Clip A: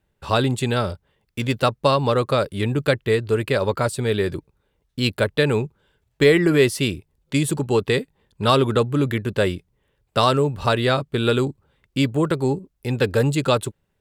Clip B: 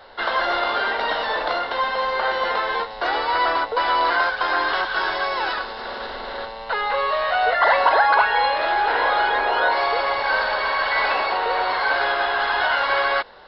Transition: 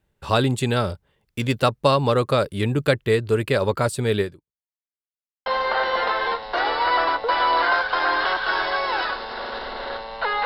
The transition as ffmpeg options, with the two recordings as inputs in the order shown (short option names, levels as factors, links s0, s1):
-filter_complex "[0:a]apad=whole_dur=10.45,atrim=end=10.45,asplit=2[s0][s1];[s0]atrim=end=4.96,asetpts=PTS-STARTPTS,afade=t=out:st=4.21:d=0.75:c=exp[s2];[s1]atrim=start=4.96:end=5.46,asetpts=PTS-STARTPTS,volume=0[s3];[1:a]atrim=start=1.94:end=6.93,asetpts=PTS-STARTPTS,afade=t=in:d=0.004:c=hsin[s4];[s2][s3][s4]concat=n=3:v=0:a=1"